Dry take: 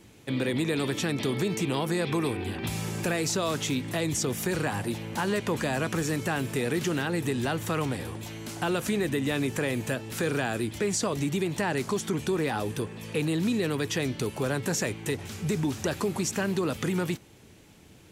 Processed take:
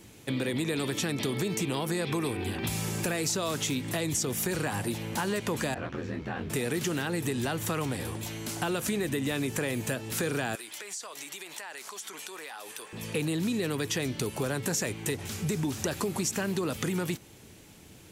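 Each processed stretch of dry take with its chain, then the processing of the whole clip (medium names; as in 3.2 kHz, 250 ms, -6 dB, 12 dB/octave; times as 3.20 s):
5.74–6.50 s: ring modulator 42 Hz + distance through air 260 m + detune thickener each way 47 cents
10.55–12.93 s: high-pass 850 Hz + compression, threshold -40 dBFS
whole clip: treble shelf 5.9 kHz +6.5 dB; compression 2.5:1, threshold -29 dBFS; trim +1 dB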